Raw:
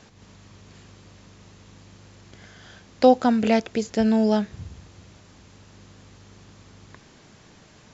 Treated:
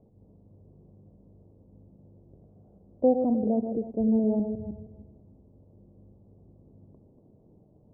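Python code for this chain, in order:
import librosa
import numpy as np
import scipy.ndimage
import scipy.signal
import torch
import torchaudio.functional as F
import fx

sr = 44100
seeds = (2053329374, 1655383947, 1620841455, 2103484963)

y = fx.reverse_delay_fb(x, sr, ms=157, feedback_pct=41, wet_db=-7)
y = scipy.signal.sosfilt(scipy.signal.cheby2(4, 50, 1600.0, 'lowpass', fs=sr, output='sos'), y)
y = F.gain(torch.from_numpy(y), -5.5).numpy()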